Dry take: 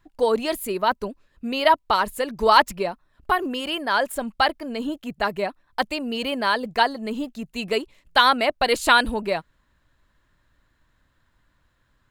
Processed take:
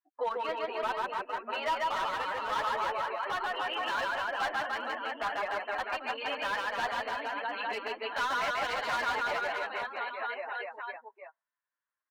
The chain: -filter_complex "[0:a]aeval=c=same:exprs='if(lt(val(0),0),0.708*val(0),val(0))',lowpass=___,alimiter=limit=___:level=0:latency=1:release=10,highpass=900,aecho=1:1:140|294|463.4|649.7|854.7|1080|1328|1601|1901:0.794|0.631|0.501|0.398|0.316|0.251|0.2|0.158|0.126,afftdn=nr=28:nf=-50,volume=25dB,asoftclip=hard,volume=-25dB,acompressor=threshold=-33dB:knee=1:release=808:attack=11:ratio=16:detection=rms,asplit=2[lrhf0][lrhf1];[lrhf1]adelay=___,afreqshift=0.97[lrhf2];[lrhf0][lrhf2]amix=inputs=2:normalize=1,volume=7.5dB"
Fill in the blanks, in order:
2100, -15dB, 8.6